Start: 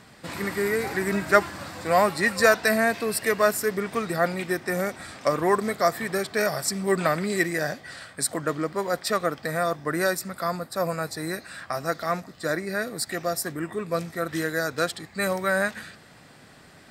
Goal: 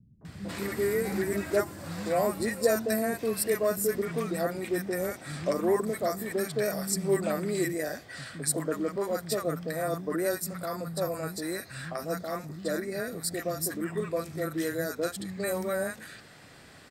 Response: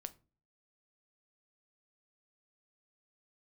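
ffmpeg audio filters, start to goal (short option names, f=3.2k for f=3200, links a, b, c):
-filter_complex "[0:a]acrossover=split=650|7500[a][b][c];[b]acompressor=threshold=-38dB:ratio=4[d];[a][d][c]amix=inputs=3:normalize=0,acrossover=split=200|860[e][f][g];[f]adelay=210[h];[g]adelay=250[i];[e][h][i]amix=inputs=3:normalize=0"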